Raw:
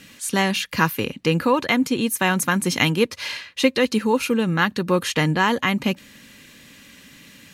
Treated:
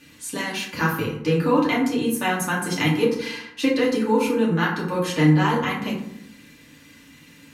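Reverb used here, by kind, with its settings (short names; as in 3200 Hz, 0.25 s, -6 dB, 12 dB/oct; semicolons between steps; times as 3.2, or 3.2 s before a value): FDN reverb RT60 0.75 s, low-frequency decay 1.3×, high-frequency decay 0.45×, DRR -5.5 dB; gain -9 dB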